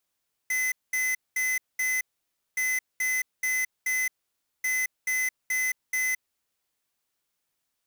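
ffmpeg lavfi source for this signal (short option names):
-f lavfi -i "aevalsrc='0.0473*(2*lt(mod(2030*t,1),0.5)-1)*clip(min(mod(mod(t,2.07),0.43),0.22-mod(mod(t,2.07),0.43))/0.005,0,1)*lt(mod(t,2.07),1.72)':d=6.21:s=44100"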